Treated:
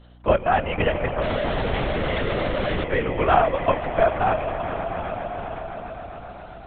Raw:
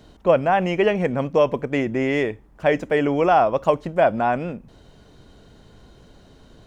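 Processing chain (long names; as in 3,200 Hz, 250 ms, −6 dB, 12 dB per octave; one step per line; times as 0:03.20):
Bessel high-pass filter 490 Hz
echo that builds up and dies away 131 ms, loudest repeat 5, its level −14.5 dB
0:01.22–0:02.84: comparator with hysteresis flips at −33.5 dBFS
linear-prediction vocoder at 8 kHz whisper
mains hum 60 Hz, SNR 26 dB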